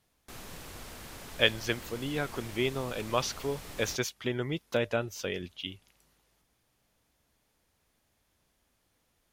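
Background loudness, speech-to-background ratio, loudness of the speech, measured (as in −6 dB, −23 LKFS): −45.5 LKFS, 13.0 dB, −32.5 LKFS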